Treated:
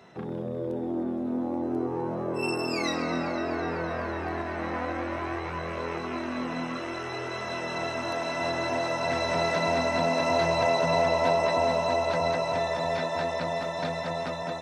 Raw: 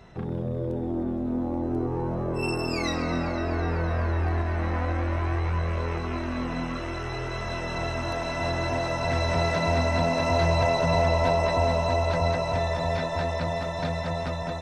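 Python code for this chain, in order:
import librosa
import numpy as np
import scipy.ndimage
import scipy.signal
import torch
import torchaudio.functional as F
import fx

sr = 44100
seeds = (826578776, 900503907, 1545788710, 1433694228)

y = scipy.signal.sosfilt(scipy.signal.butter(2, 200.0, 'highpass', fs=sr, output='sos'), x)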